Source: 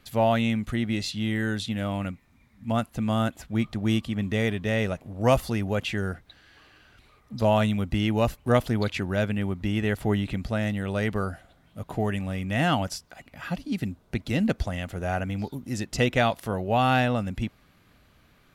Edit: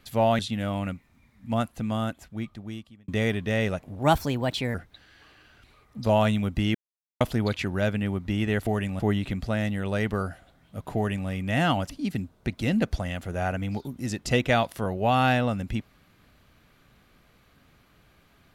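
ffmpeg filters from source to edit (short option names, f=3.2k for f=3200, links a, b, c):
-filter_complex "[0:a]asplit=10[a][b][c][d][e][f][g][h][i][j];[a]atrim=end=0.392[k];[b]atrim=start=1.568:end=4.26,asetpts=PTS-STARTPTS,afade=t=out:st=1.102:d=1.59[l];[c]atrim=start=4.26:end=5.174,asetpts=PTS-STARTPTS,afade=t=in:d=0.004:c=hsin[m];[d]atrim=start=5.17:end=6.1,asetpts=PTS-STARTPTS,asetrate=54243,aresample=44100[n];[e]atrim=start=6.096:end=8.1,asetpts=PTS-STARTPTS,afade=t=out:st=2:d=0.004:c=hsin[o];[f]atrim=start=8.1:end=8.56,asetpts=PTS-STARTPTS,volume=0[p];[g]atrim=start=8.56:end=10.022,asetpts=PTS-STARTPTS,afade=t=in:d=0.004:c=hsin[q];[h]atrim=start=11.978:end=12.312[r];[i]atrim=start=10.018:end=12.922[s];[j]atrim=start=13.568[t];[l][m]concat=n=2:v=0:a=1[u];[k][u]acrossfade=d=0.004:c1=hsin:c2=hsin[v];[v][n]acrossfade=d=0.004:c1=hsin:c2=hsin[w];[o][p][q]concat=n=3:v=0:a=1[x];[w][x]acrossfade=d=0.004:c1=hsin:c2=hsin[y];[y][r]acrossfade=d=0.004:c1=hsin:c2=hsin[z];[z][s]acrossfade=d=0.004:c1=hsin:c2=hsin[aa];[aa][t]acrossfade=d=0.004:c1=hsin:c2=hsin"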